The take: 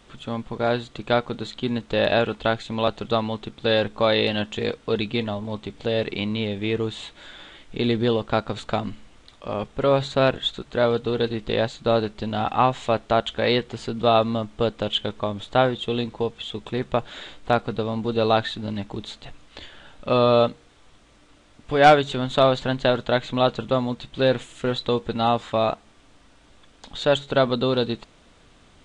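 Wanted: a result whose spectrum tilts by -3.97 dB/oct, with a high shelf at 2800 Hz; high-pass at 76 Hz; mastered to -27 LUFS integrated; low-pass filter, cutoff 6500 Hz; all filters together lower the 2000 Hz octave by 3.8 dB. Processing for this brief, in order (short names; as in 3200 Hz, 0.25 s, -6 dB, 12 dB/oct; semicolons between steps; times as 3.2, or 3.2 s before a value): HPF 76 Hz; LPF 6500 Hz; bell 2000 Hz -8 dB; high shelf 2800 Hz +5.5 dB; gain -3 dB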